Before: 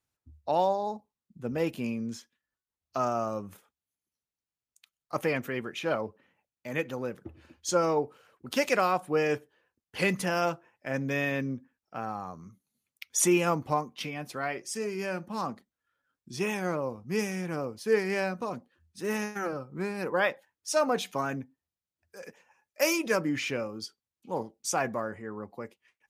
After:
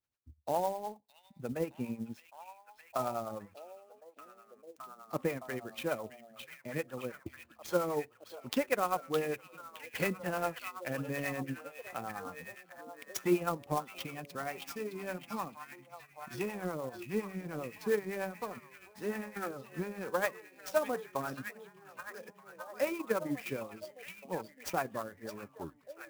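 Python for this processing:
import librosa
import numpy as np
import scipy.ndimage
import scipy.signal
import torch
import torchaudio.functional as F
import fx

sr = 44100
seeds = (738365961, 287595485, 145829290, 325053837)

p1 = fx.tape_stop_end(x, sr, length_s=0.63)
p2 = fx.env_lowpass_down(p1, sr, base_hz=2200.0, full_db=-27.5)
p3 = fx.harmonic_tremolo(p2, sr, hz=9.9, depth_pct=70, crossover_hz=500.0)
p4 = fx.transient(p3, sr, attack_db=5, sustain_db=-6)
p5 = p4 + fx.echo_stepped(p4, sr, ms=614, hz=3500.0, octaves=-0.7, feedback_pct=70, wet_db=-4, dry=0)
p6 = fx.clock_jitter(p5, sr, seeds[0], jitter_ms=0.028)
y = p6 * 10.0 ** (-4.0 / 20.0)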